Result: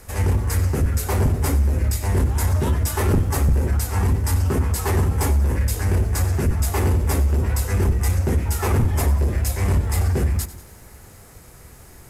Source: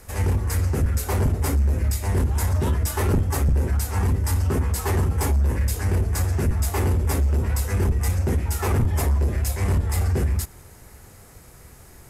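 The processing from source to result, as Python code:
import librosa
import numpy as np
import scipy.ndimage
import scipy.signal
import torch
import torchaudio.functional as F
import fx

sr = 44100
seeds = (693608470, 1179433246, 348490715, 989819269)

y = fx.echo_crushed(x, sr, ms=95, feedback_pct=55, bits=8, wet_db=-15)
y = y * librosa.db_to_amplitude(2.0)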